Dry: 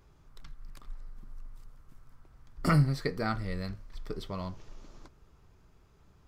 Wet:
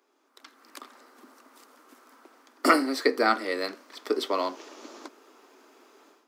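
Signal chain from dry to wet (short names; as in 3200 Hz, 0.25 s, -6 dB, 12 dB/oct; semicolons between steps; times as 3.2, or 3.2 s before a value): steep high-pass 250 Hz 72 dB/oct; AGC gain up to 16 dB; gain -2.5 dB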